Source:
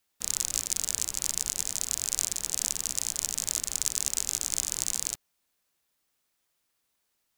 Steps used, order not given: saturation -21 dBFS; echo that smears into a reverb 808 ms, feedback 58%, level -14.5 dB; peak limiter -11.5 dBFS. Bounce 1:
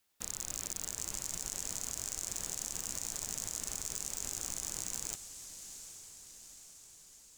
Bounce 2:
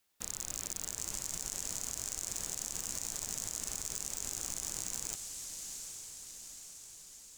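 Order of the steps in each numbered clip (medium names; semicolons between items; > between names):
peak limiter > echo that smears into a reverb > saturation; echo that smears into a reverb > peak limiter > saturation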